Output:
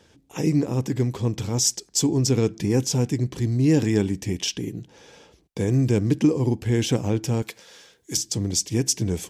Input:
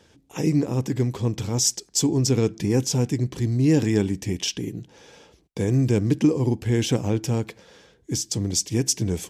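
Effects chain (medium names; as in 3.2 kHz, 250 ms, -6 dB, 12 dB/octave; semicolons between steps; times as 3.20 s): 7.42–8.17 s: tilt EQ +3 dB/octave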